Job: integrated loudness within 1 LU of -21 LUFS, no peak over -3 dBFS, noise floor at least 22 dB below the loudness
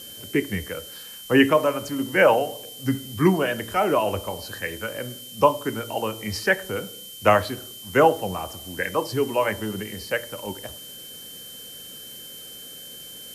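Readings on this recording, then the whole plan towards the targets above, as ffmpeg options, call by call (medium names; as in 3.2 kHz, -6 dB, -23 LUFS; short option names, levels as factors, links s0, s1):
steady tone 3.1 kHz; tone level -41 dBFS; noise floor -41 dBFS; noise floor target -46 dBFS; loudness -24.0 LUFS; peak level -3.5 dBFS; loudness target -21.0 LUFS
-> -af "bandreject=f=3100:w=30"
-af "afftdn=nr=6:nf=-41"
-af "volume=1.41,alimiter=limit=0.708:level=0:latency=1"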